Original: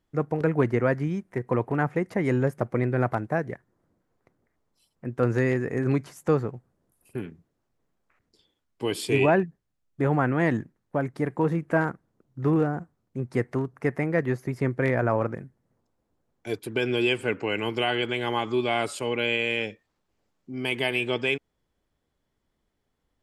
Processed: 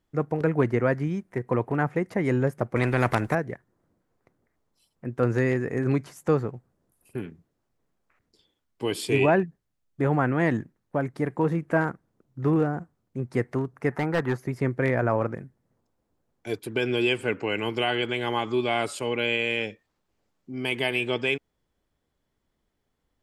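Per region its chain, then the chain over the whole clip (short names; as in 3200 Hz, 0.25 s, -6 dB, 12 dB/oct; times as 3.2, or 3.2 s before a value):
2.76–3.35 low shelf 220 Hz +10.5 dB + spectral compressor 2:1
13.91–14.37 band shelf 1100 Hz +10.5 dB 1.2 oct + notch 1100 Hz + hard clip -17.5 dBFS
whole clip: dry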